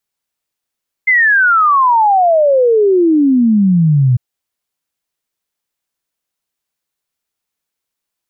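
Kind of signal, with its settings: log sweep 2100 Hz -> 120 Hz 3.10 s -7 dBFS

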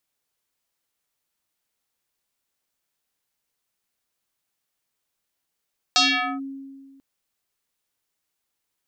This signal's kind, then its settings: FM tone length 1.04 s, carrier 272 Hz, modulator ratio 3.69, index 5.6, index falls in 0.44 s linear, decay 1.73 s, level -13 dB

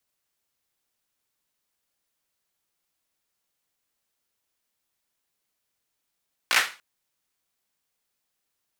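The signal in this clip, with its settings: hand clap length 0.29 s, bursts 4, apart 17 ms, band 1800 Hz, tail 0.33 s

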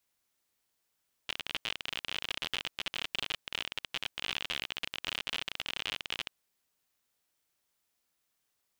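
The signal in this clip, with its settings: random clicks 52/s -18 dBFS 5.00 s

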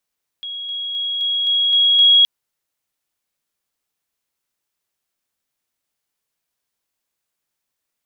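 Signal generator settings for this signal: level ladder 3310 Hz -26 dBFS, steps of 3 dB, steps 7, 0.26 s 0.00 s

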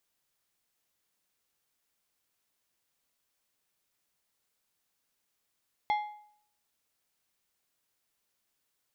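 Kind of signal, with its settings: metal hit plate, lowest mode 839 Hz, decay 0.62 s, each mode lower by 9 dB, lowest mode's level -23 dB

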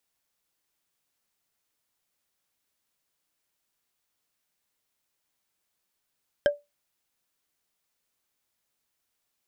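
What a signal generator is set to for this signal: wood hit bar, lowest mode 581 Hz, decay 0.20 s, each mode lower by 6 dB, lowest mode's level -14 dB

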